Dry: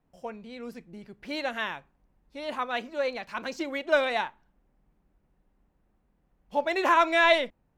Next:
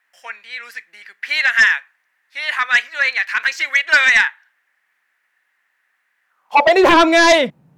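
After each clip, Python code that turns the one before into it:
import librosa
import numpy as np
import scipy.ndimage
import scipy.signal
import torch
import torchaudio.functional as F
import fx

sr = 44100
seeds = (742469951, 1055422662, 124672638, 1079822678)

y = fx.filter_sweep_highpass(x, sr, from_hz=1800.0, to_hz=150.0, start_s=6.24, end_s=7.25, q=5.0)
y = fx.fold_sine(y, sr, drive_db=9, ceiling_db=-6.0)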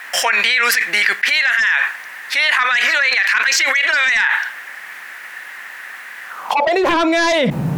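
y = fx.env_flatten(x, sr, amount_pct=100)
y = y * 10.0 ** (-6.5 / 20.0)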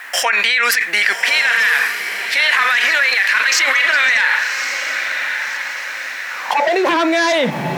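y = scipy.signal.sosfilt(scipy.signal.butter(2, 200.0, 'highpass', fs=sr, output='sos'), x)
y = fx.echo_diffused(y, sr, ms=1140, feedback_pct=50, wet_db=-7)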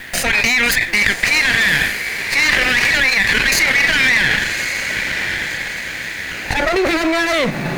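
y = fx.lower_of_two(x, sr, delay_ms=0.45)
y = y * 10.0 ** (1.0 / 20.0)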